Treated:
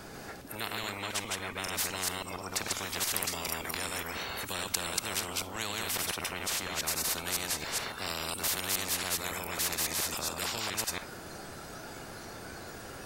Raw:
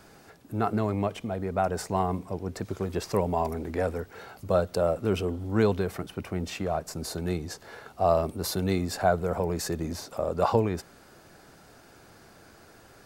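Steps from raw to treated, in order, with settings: chunks repeated in reverse 139 ms, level -2.5 dB; spectral noise reduction 9 dB; spectrum-flattening compressor 10:1; trim +2 dB

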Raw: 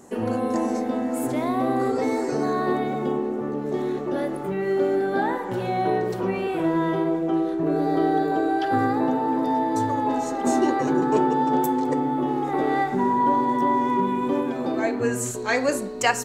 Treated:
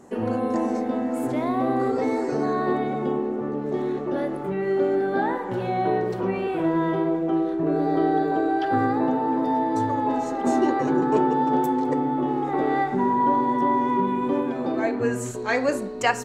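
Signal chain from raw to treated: treble shelf 5.2 kHz -10.5 dB

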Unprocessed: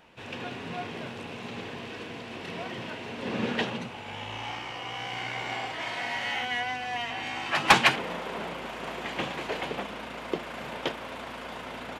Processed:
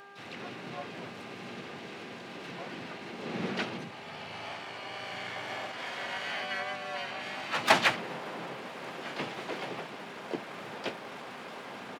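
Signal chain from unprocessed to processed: harmony voices -4 st -1 dB, +7 st -6 dB; high-pass 120 Hz 24 dB/octave; mains buzz 400 Hz, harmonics 4, -47 dBFS -1 dB/octave; tape noise reduction on one side only encoder only; trim -7.5 dB

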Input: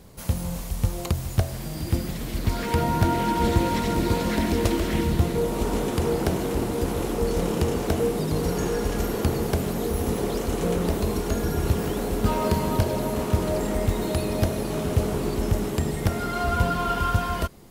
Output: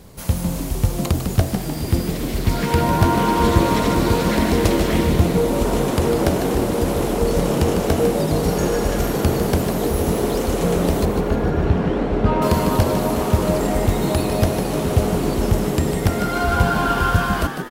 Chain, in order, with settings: 11.05–12.42 s: low-pass 2.5 kHz 12 dB/octave; on a send: frequency-shifting echo 151 ms, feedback 52%, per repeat +100 Hz, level -8 dB; on the sum: trim +5 dB

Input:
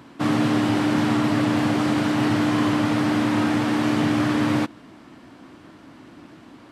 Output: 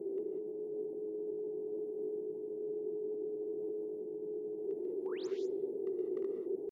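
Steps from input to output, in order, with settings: elliptic band-stop 600–8100 Hz, stop band 70 dB; compressor with a negative ratio -35 dBFS, ratio -1; vowel filter i; painted sound rise, 5.07–5.28 s, 490–5400 Hz -56 dBFS; pitch shift +6 st; hard clipper -32.5 dBFS, distortion -38 dB; bucket-brigade echo 66 ms, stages 2048, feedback 60%, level -23 dB; gated-style reverb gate 220 ms rising, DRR 5 dB; trim +2 dB

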